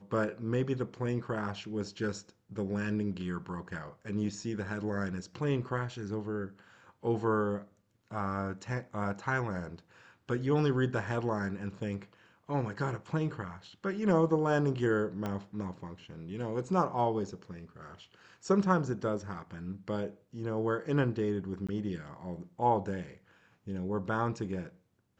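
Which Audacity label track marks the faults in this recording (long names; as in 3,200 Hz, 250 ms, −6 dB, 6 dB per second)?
15.260000	15.260000	click −22 dBFS
21.670000	21.690000	drop-out 16 ms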